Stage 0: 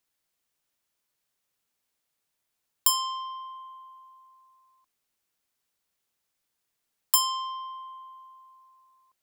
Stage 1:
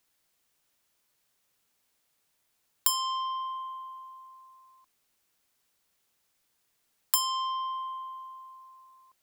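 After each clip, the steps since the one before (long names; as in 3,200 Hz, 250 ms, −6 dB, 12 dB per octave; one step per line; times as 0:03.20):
downward compressor 2 to 1, threshold −36 dBFS, peak gain reduction 11 dB
level +6 dB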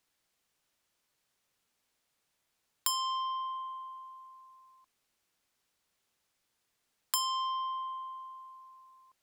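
high-shelf EQ 11,000 Hz −9.5 dB
level −2 dB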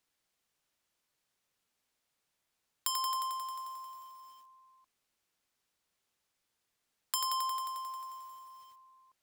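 feedback echo at a low word length 89 ms, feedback 80%, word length 9 bits, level −5.5 dB
level −3 dB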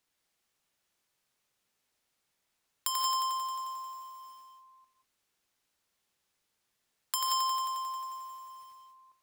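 reverb whose tail is shaped and stops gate 210 ms rising, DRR 4 dB
level +1 dB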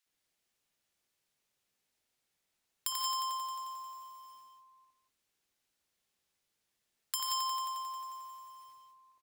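multiband delay without the direct sound highs, lows 60 ms, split 1,100 Hz
level −2.5 dB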